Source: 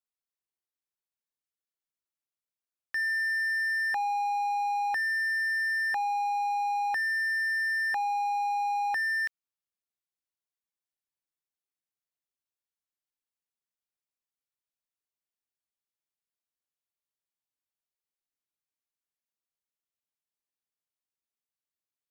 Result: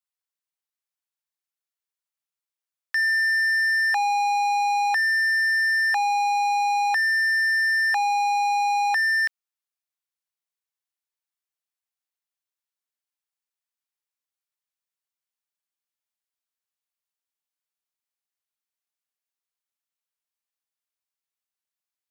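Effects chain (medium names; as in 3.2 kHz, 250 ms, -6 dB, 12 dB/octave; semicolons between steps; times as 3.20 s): high-pass 720 Hz 12 dB/octave; waveshaping leveller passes 2; trim +5.5 dB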